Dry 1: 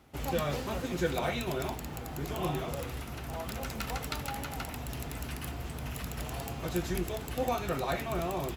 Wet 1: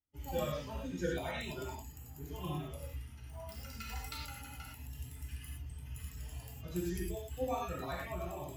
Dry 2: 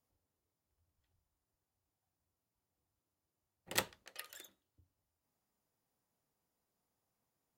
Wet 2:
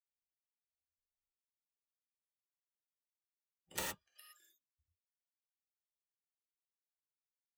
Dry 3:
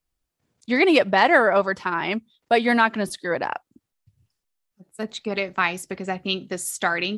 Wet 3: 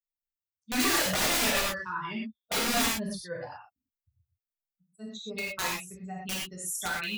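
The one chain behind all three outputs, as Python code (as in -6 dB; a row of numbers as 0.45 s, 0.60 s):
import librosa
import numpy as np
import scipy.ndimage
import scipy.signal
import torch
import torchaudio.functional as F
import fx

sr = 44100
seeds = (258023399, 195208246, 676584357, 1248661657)

y = fx.bin_expand(x, sr, power=2.0)
y = (np.mod(10.0 ** (19.5 / 20.0) * y + 1.0, 2.0) - 1.0) / 10.0 ** (19.5 / 20.0)
y = fx.rev_gated(y, sr, seeds[0], gate_ms=140, shape='flat', drr_db=-4.0)
y = F.gain(torch.from_numpy(y), -6.5).numpy()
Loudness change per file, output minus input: -6.5 LU, -2.0 LU, -7.0 LU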